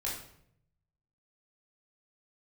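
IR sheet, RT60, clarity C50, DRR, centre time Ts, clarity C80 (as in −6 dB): 0.70 s, 3.5 dB, −5.5 dB, 41 ms, 8.0 dB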